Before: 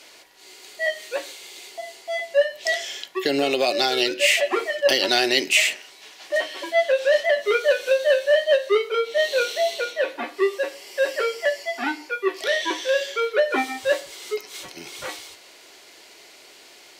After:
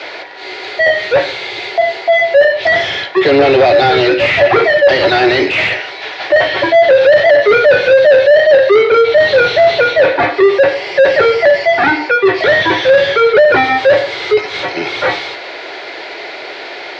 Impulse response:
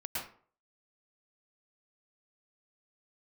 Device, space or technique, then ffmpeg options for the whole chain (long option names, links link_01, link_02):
overdrive pedal into a guitar cabinet: -filter_complex "[0:a]asplit=2[link_01][link_02];[link_02]highpass=frequency=720:poles=1,volume=32dB,asoftclip=type=tanh:threshold=-4dB[link_03];[link_01][link_03]amix=inputs=2:normalize=0,lowpass=frequency=1400:poles=1,volume=-6dB,highpass=86,equalizer=frequency=110:width_type=q:width=4:gain=7,equalizer=frequency=230:width_type=q:width=4:gain=-10,equalizer=frequency=1100:width_type=q:width=4:gain=-7,equalizer=frequency=2900:width_type=q:width=4:gain=-7,lowpass=frequency=4100:width=0.5412,lowpass=frequency=4100:width=1.3066,volume=5.5dB"